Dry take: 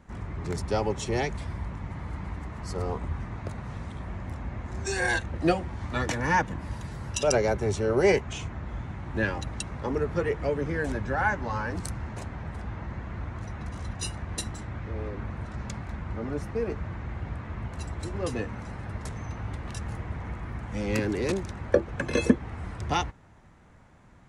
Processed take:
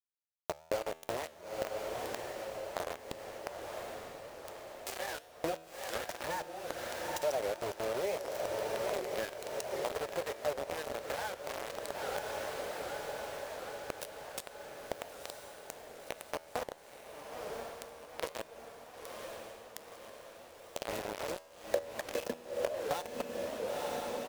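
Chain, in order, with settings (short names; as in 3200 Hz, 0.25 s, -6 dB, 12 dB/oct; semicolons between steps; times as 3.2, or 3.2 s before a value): feedback echo 0.904 s, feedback 35%, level -11.5 dB; bit-crush 4-bit; low shelf 390 Hz -8 dB; diffused feedback echo 0.967 s, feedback 60%, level -11.5 dB; compressor 20:1, threshold -35 dBFS, peak gain reduction 18.5 dB; bell 580 Hz +13.5 dB 0.94 oct; resonator 81 Hz, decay 1 s, harmonics all, mix 50%; record warp 78 rpm, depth 160 cents; gain +2.5 dB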